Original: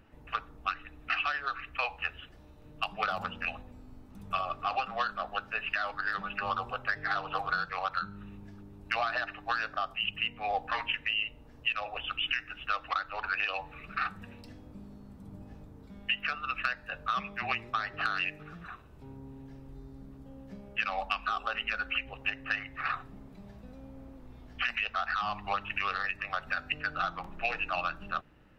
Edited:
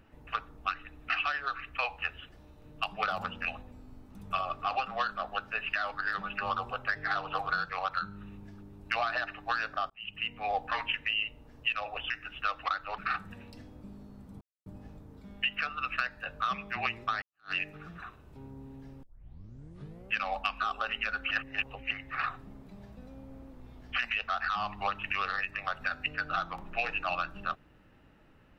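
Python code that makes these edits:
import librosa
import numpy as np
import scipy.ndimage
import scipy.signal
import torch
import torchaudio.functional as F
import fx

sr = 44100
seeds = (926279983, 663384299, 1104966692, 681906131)

y = fx.edit(x, sr, fx.fade_in_span(start_s=9.9, length_s=0.45),
    fx.cut(start_s=12.1, length_s=0.25),
    fx.cut(start_s=13.23, length_s=0.66),
    fx.insert_silence(at_s=15.32, length_s=0.25),
    fx.fade_in_span(start_s=17.88, length_s=0.3, curve='exp'),
    fx.tape_start(start_s=19.69, length_s=1.1),
    fx.reverse_span(start_s=21.97, length_s=0.6), tone=tone)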